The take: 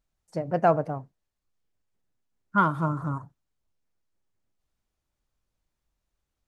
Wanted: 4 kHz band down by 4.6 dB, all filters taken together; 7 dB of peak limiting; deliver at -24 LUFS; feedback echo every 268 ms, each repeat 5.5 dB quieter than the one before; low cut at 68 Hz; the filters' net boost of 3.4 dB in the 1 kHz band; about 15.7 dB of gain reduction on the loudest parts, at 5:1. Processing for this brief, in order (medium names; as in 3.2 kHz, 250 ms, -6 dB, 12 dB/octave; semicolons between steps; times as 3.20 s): high-pass 68 Hz; peaking EQ 1 kHz +5 dB; peaking EQ 4 kHz -7 dB; compression 5:1, threshold -31 dBFS; peak limiter -25.5 dBFS; feedback delay 268 ms, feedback 53%, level -5.5 dB; trim +15 dB